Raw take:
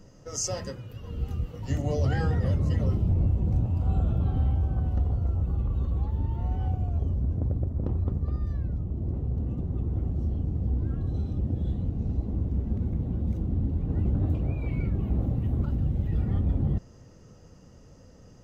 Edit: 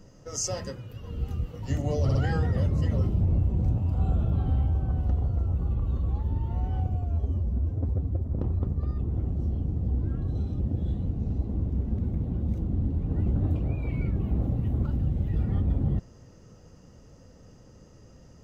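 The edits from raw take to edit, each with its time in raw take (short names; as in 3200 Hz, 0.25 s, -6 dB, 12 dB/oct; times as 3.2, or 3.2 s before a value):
2.03 stutter 0.06 s, 3 plays
6.83–7.69 stretch 1.5×
8.43–9.77 cut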